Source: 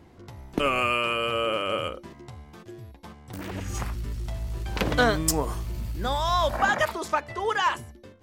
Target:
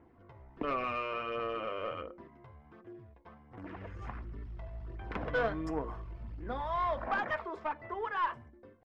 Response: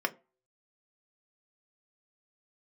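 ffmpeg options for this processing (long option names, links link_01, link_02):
-filter_complex "[0:a]lowpass=1900,flanger=delay=0.1:depth=1.9:regen=-34:speed=1.5:shape=sinusoidal,atempo=0.93,aeval=exprs='(tanh(10*val(0)+0.25)-tanh(0.25))/10':channel_layout=same,asplit=2[link_01][link_02];[1:a]atrim=start_sample=2205[link_03];[link_02][link_03]afir=irnorm=-1:irlink=0,volume=-8.5dB[link_04];[link_01][link_04]amix=inputs=2:normalize=0,volume=-8.5dB"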